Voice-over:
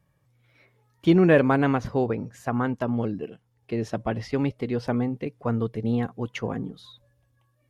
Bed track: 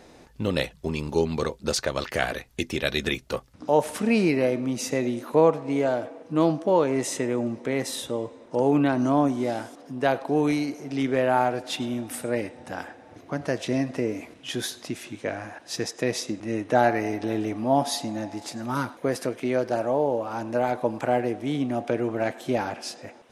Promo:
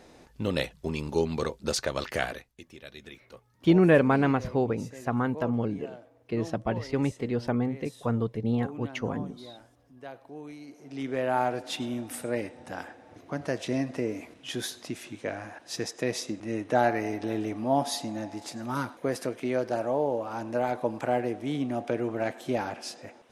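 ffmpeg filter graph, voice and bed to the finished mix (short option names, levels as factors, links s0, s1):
-filter_complex "[0:a]adelay=2600,volume=0.794[s0];[1:a]volume=4.73,afade=t=out:st=2.17:d=0.38:silence=0.141254,afade=t=in:st=10.59:d=0.9:silence=0.149624[s1];[s0][s1]amix=inputs=2:normalize=0"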